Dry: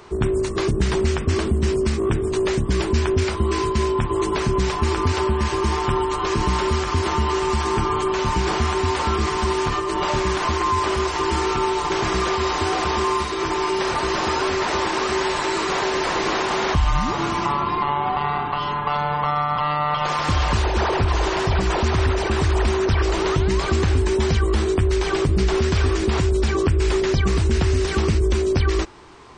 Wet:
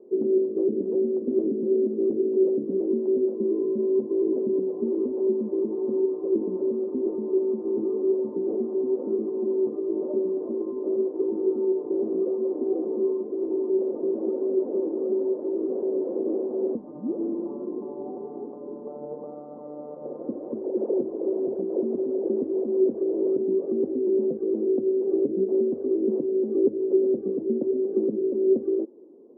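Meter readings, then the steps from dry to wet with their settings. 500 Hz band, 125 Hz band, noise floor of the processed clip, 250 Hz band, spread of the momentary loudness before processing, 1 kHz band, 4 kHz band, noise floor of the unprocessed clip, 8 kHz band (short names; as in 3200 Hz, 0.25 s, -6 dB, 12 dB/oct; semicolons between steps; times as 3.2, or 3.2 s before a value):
0.0 dB, under -25 dB, -39 dBFS, -1.0 dB, 2 LU, -28.5 dB, under -40 dB, -25 dBFS, under -40 dB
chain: elliptic band-pass 230–530 Hz, stop band 80 dB; flange 0.97 Hz, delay 0.8 ms, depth 6.5 ms, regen +73%; gain +5 dB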